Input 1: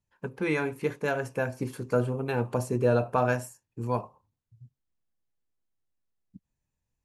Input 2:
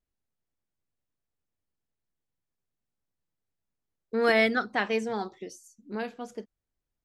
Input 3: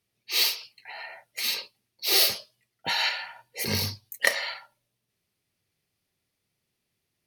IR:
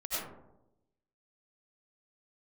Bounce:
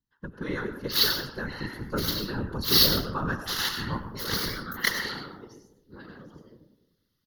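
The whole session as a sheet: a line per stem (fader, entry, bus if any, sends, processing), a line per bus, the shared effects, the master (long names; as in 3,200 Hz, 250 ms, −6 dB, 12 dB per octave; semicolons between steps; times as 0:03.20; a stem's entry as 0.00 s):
−2.0 dB, 0.00 s, send −11 dB, no processing
−8.0 dB, 0.00 s, send −5.5 dB, downward expander −48 dBFS; automatic ducking −12 dB, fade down 0.60 s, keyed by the first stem
+1.5 dB, 0.60 s, send −9 dB, harmonic generator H 3 −16 dB, 7 −13 dB, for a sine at −13.5 dBFS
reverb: on, RT60 0.90 s, pre-delay 55 ms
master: phaser with its sweep stopped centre 2,400 Hz, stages 6; random phases in short frames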